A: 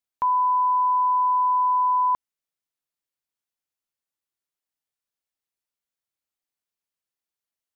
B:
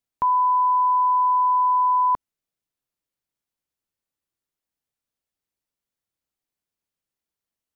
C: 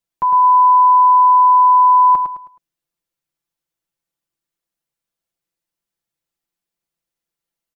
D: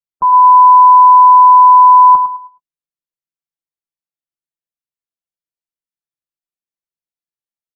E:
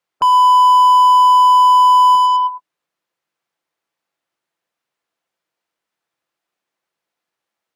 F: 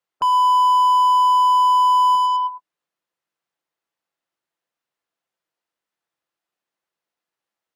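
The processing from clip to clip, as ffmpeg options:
-af "lowshelf=f=470:g=9"
-filter_complex "[0:a]aecho=1:1:5.9:0.79,asplit=2[s0][s1];[s1]aecho=0:1:106|212|318|424:0.473|0.161|0.0547|0.0186[s2];[s0][s2]amix=inputs=2:normalize=0"
-filter_complex "[0:a]afftdn=nr=18:nf=-30,asplit=2[s0][s1];[s1]adelay=19,volume=0.211[s2];[s0][s2]amix=inputs=2:normalize=0,volume=1.5"
-filter_complex "[0:a]asplit=2[s0][s1];[s1]highpass=f=720:p=1,volume=50.1,asoftclip=type=tanh:threshold=0.891[s2];[s0][s2]amix=inputs=2:normalize=0,lowpass=f=1100:p=1,volume=0.501,volume=0.708"
-af "bandreject=f=2300:w=28,volume=0.531"

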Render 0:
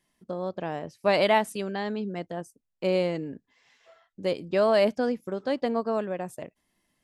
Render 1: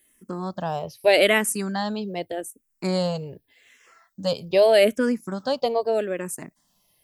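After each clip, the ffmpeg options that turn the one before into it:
-filter_complex "[0:a]aemphasis=mode=production:type=50fm,asplit=2[s0][s1];[s1]afreqshift=-0.83[s2];[s0][s2]amix=inputs=2:normalize=1,volume=2.24"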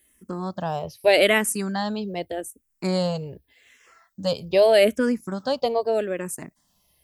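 -af "equalizer=f=67:t=o:w=0.73:g=12.5"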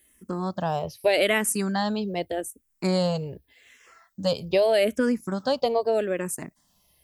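-af "acompressor=threshold=0.112:ratio=4,volume=1.12"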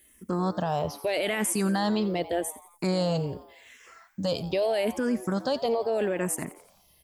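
-filter_complex "[0:a]alimiter=limit=0.0841:level=0:latency=1:release=11,asplit=5[s0][s1][s2][s3][s4];[s1]adelay=87,afreqshift=130,volume=0.141[s5];[s2]adelay=174,afreqshift=260,volume=0.0708[s6];[s3]adelay=261,afreqshift=390,volume=0.0355[s7];[s4]adelay=348,afreqshift=520,volume=0.0176[s8];[s0][s5][s6][s7][s8]amix=inputs=5:normalize=0,volume=1.33"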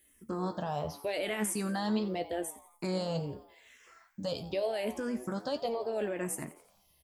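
-filter_complex "[0:a]flanger=delay=9.8:depth=7.5:regen=69:speed=0.89:shape=sinusoidal,asplit=2[s0][s1];[s1]adelay=14,volume=0.266[s2];[s0][s2]amix=inputs=2:normalize=0,volume=0.75"

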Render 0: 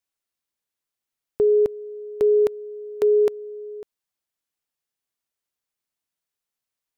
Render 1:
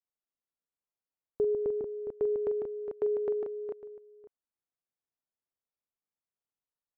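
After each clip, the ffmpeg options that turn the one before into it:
-af "lowpass=1200,aecho=1:1:44|149|411|443:0.316|0.501|0.335|0.447,volume=0.376"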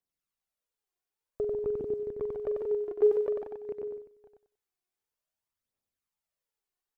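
-af "aphaser=in_gain=1:out_gain=1:delay=2.9:decay=0.61:speed=0.52:type=triangular,aecho=1:1:94|188|282:0.708|0.163|0.0375"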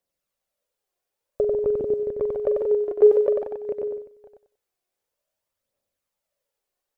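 -af "equalizer=f=560:t=o:w=0.42:g=13.5,volume=1.88"

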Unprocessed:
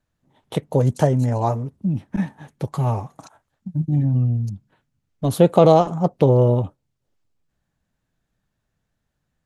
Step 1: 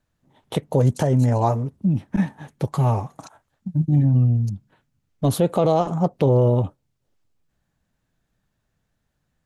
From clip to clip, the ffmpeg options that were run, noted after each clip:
-af "alimiter=limit=0.282:level=0:latency=1:release=106,volume=1.26"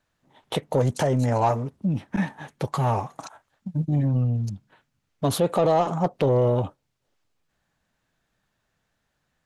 -filter_complex "[0:a]asoftclip=type=tanh:threshold=0.316,asplit=2[s0][s1];[s1]highpass=f=720:p=1,volume=2.82,asoftclip=type=tanh:threshold=0.266[s2];[s0][s2]amix=inputs=2:normalize=0,lowpass=f=5600:p=1,volume=0.501"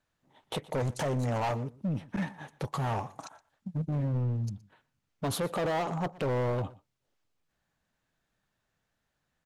-af "asoftclip=type=hard:threshold=0.0841,aecho=1:1:120:0.0891,volume=0.531"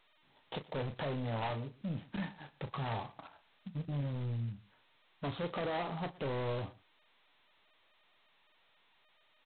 -filter_complex "[0:a]asplit=2[s0][s1];[s1]adelay=35,volume=0.316[s2];[s0][s2]amix=inputs=2:normalize=0,volume=0.447" -ar 8000 -c:a adpcm_g726 -b:a 16k

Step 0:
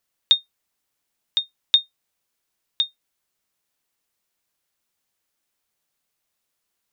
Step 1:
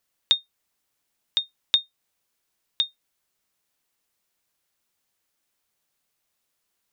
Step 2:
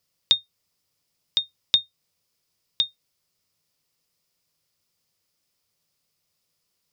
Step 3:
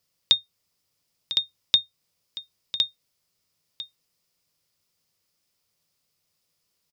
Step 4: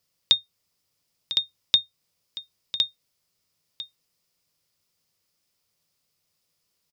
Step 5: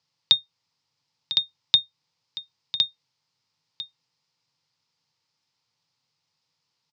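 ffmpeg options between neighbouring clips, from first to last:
-af "acompressor=threshold=0.0501:ratio=1.5,volume=1.12"
-af "equalizer=f=100:t=o:w=0.33:g=12,equalizer=f=160:t=o:w=0.33:g=11,equalizer=f=500:t=o:w=0.33:g=4,equalizer=f=800:t=o:w=0.33:g=-4,equalizer=f=1600:t=o:w=0.33:g=-6,equalizer=f=5000:t=o:w=0.33:g=9"
-af "aecho=1:1:1000:0.211"
-af anull
-af "highpass=f=110:w=0.5412,highpass=f=110:w=1.3066,equalizer=f=130:t=q:w=4:g=8,equalizer=f=190:t=q:w=4:g=-6,equalizer=f=380:t=q:w=4:g=-7,equalizer=f=620:t=q:w=4:g=-8,equalizer=f=880:t=q:w=4:g=9,equalizer=f=4200:t=q:w=4:g=3,lowpass=f=6100:w=0.5412,lowpass=f=6100:w=1.3066"

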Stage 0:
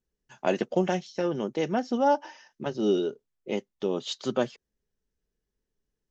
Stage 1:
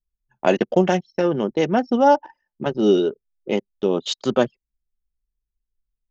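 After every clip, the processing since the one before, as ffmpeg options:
-af "anlmdn=1,volume=2.51"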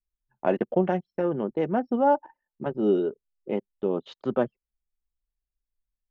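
-af "lowpass=1600,volume=0.501"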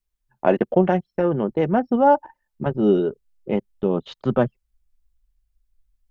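-af "asubboost=boost=4.5:cutoff=150,volume=2.11"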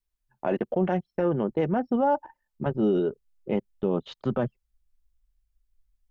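-af "alimiter=limit=0.251:level=0:latency=1:release=26,volume=0.668"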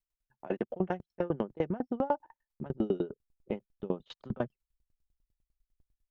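-af "aeval=exprs='val(0)*pow(10,-28*if(lt(mod(10*n/s,1),2*abs(10)/1000),1-mod(10*n/s,1)/(2*abs(10)/1000),(mod(10*n/s,1)-2*abs(10)/1000)/(1-2*abs(10)/1000))/20)':c=same"

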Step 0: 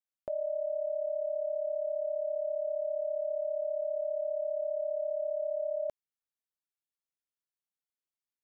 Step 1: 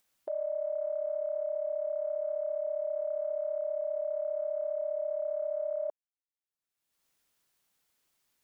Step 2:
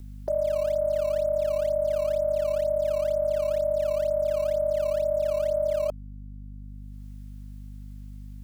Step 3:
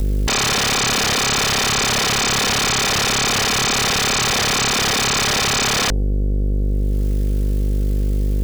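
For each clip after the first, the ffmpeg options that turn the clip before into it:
-af "afwtdn=0.00708,acompressor=mode=upward:threshold=0.00355:ratio=2.5"
-filter_complex "[0:a]aeval=exprs='val(0)+0.00447*(sin(2*PI*50*n/s)+sin(2*PI*2*50*n/s)/2+sin(2*PI*3*50*n/s)/3+sin(2*PI*4*50*n/s)/4+sin(2*PI*5*50*n/s)/5)':c=same,acrossover=split=600|630|700[s0][s1][s2][s3];[s2]acrusher=samples=15:mix=1:aa=0.000001:lfo=1:lforange=24:lforate=2.1[s4];[s0][s1][s4][s3]amix=inputs=4:normalize=0,volume=2.51"
-af "bandreject=f=81.75:t=h:w=4,bandreject=f=163.5:t=h:w=4,bandreject=f=245.25:t=h:w=4,bandreject=f=327:t=h:w=4,bandreject=f=408.75:t=h:w=4,bandreject=f=490.5:t=h:w=4,aeval=exprs='0.133*sin(PI/2*10*val(0)/0.133)':c=same,volume=1.33"

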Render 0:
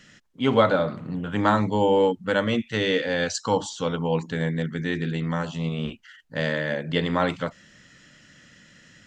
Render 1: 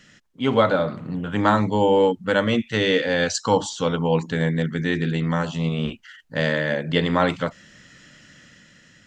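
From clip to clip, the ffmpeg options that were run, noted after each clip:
-af "dynaudnorm=f=160:g=9:m=1.58"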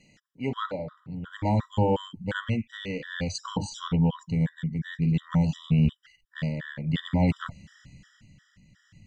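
-af "asubboost=boost=9.5:cutoff=140,tremolo=f=0.53:d=0.59,afftfilt=real='re*gt(sin(2*PI*2.8*pts/sr)*(1-2*mod(floor(b*sr/1024/980),2)),0)':imag='im*gt(sin(2*PI*2.8*pts/sr)*(1-2*mod(floor(b*sr/1024/980),2)),0)':win_size=1024:overlap=0.75,volume=0.631"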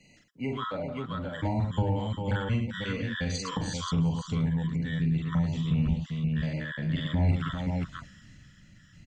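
-filter_complex "[0:a]asplit=2[s0][s1];[s1]aecho=0:1:42|45|110|395|528:0.708|0.473|0.398|0.266|0.501[s2];[s0][s2]amix=inputs=2:normalize=0,acrossover=split=140[s3][s4];[s4]acompressor=threshold=0.0316:ratio=6[s5];[s3][s5]amix=inputs=2:normalize=0"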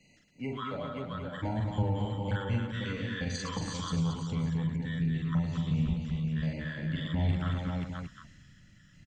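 -af "aecho=1:1:227:0.501,volume=0.631"

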